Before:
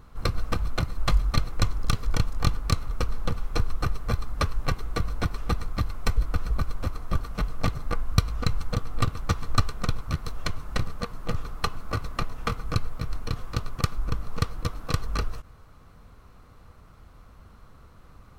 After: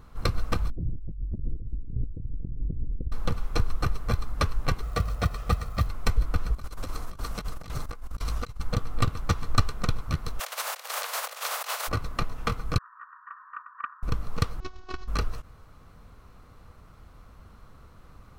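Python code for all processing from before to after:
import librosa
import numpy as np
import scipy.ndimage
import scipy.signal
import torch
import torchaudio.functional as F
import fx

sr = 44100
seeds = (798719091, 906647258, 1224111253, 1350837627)

y = fx.chain(x, sr, fx.cheby2_lowpass(hz=1200.0, order=4, stop_db=60),
    fx.hum_notches(base_hz=60, count=2),
    fx.over_compress(threshold_db=-30.0, ratio=-1.0), at=(0.7, 3.12))
y = fx.chain(y, sr, fx.highpass(hz=40.0, slope=12),
    fx.comb(ms=1.6, depth=0.49),
    fx.quant_float(bits=4), at=(4.83, 5.87))
y = fx.chain(y, sr, fx.bass_treble(bass_db=-3, treble_db=8),
    fx.over_compress(threshold_db=-31.0, ratio=-0.5),
    fx.doppler_dist(depth_ms=0.15), at=(6.54, 8.6))
y = fx.spec_flatten(y, sr, power=0.49, at=(10.39, 11.87), fade=0.02)
y = fx.over_compress(y, sr, threshold_db=-30.0, ratio=-0.5, at=(10.39, 11.87), fade=0.02)
y = fx.steep_highpass(y, sr, hz=520.0, slope=48, at=(10.39, 11.87), fade=0.02)
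y = fx.chain(y, sr, fx.brickwall_bandpass(low_hz=920.0, high_hz=1900.0),
    fx.tilt_eq(slope=1.5),
    fx.doppler_dist(depth_ms=0.11), at=(12.78, 14.03))
y = fx.chain(y, sr, fx.cvsd(bps=32000),
    fx.tube_stage(drive_db=17.0, bias=0.8),
    fx.robotise(hz=370.0), at=(14.6, 15.08))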